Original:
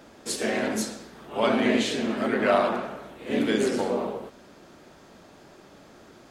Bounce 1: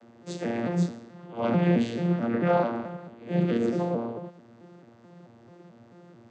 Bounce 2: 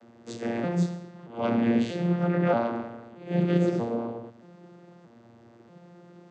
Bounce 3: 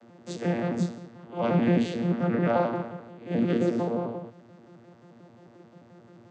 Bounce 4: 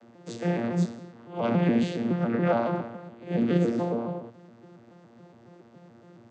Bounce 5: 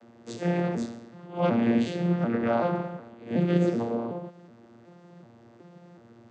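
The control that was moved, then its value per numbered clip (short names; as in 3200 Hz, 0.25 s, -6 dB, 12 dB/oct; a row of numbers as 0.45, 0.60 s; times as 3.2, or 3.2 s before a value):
arpeggiated vocoder, a note every: 219, 631, 88, 140, 373 ms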